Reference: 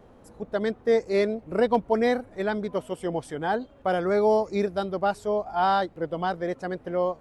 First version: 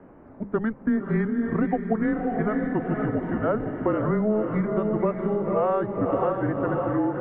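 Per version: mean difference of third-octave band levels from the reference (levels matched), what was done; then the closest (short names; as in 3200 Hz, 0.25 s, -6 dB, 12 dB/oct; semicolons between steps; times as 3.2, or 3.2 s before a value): 9.5 dB: diffused feedback echo 0.531 s, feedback 47%, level -5 dB; compressor, threshold -26 dBFS, peak gain reduction 10.5 dB; notches 60/120/180/240/300/360/420 Hz; mistuned SSB -220 Hz 320–2300 Hz; gain +6.5 dB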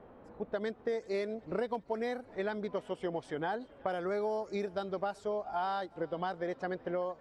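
3.5 dB: low-pass opened by the level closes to 2100 Hz, open at -19 dBFS; low shelf 170 Hz -8.5 dB; compressor, threshold -32 dBFS, peak gain reduction 14.5 dB; on a send: thinning echo 0.381 s, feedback 62%, level -23.5 dB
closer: second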